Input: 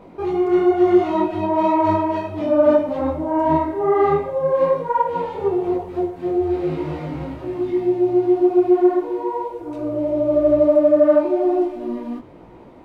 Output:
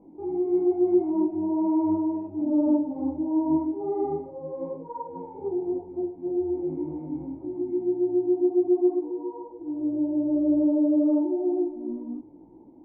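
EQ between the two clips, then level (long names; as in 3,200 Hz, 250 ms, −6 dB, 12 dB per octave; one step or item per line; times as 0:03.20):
formant resonators in series u
high-shelf EQ 2,200 Hz +9.5 dB
0.0 dB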